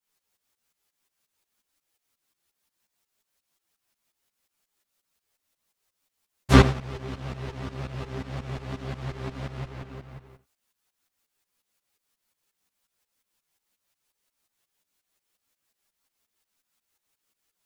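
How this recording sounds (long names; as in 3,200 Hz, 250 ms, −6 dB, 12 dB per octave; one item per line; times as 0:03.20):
tremolo saw up 5.6 Hz, depth 85%
a shimmering, thickened sound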